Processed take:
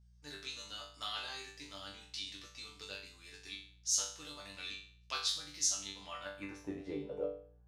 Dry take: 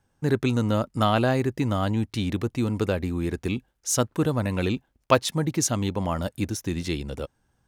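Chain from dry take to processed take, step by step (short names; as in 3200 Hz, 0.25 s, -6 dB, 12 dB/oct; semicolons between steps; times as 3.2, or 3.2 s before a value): band-pass sweep 4800 Hz -> 530 Hz, 5.99–6.75; resonator bank G2 fifth, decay 0.48 s; buzz 60 Hz, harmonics 3, -77 dBFS -9 dB/oct; gain +14 dB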